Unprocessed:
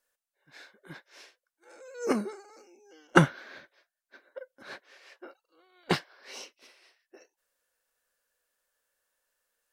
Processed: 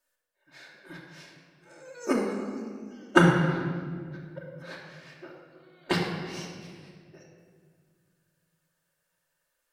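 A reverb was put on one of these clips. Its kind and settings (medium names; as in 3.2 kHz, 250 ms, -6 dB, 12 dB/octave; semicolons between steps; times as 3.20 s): simulated room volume 3000 m³, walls mixed, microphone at 2.7 m; trim -1.5 dB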